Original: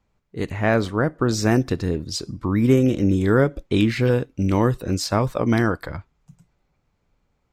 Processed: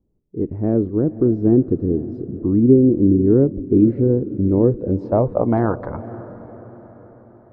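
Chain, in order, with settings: low-pass sweep 350 Hz -> 950 Hz, 4.33–5.83; diffused feedback echo 0.528 s, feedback 50%, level -15.5 dB

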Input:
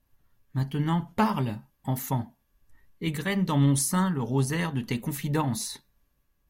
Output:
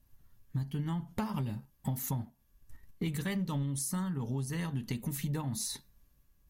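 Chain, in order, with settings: tone controls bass +7 dB, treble +6 dB; 1.34–3.63 sample leveller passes 1; compressor 12:1, threshold -29 dBFS, peak gain reduction 17.5 dB; gain -2 dB

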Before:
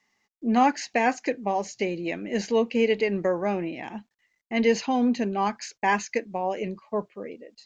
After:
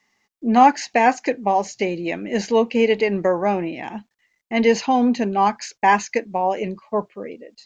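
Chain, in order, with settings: dynamic EQ 860 Hz, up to +5 dB, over -39 dBFS, Q 2; gain +4.5 dB

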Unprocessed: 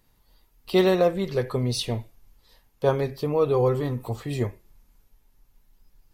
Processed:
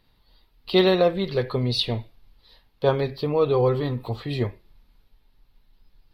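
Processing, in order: resonant high shelf 5300 Hz -9 dB, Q 3; gain +1 dB

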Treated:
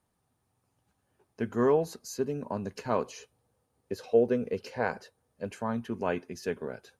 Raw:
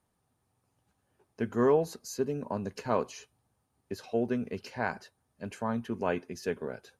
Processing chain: 3.07–5.47 bell 490 Hz +11.5 dB 0.36 oct

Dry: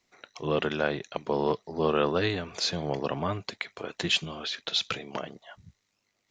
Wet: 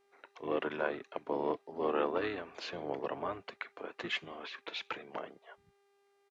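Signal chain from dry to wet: harmoniser -7 st -7 dB; three-band isolator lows -16 dB, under 270 Hz, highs -16 dB, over 2700 Hz; buzz 400 Hz, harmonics 31, -66 dBFS -7 dB/oct; gain -6 dB

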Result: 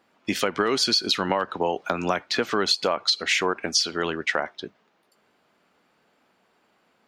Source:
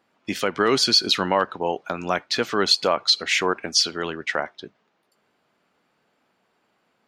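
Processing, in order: compressor 5:1, threshold -22 dBFS, peak gain reduction 9 dB; bell 130 Hz -4.5 dB 0.37 oct; 1.29–2.51 three-band squash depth 40%; gain +3 dB

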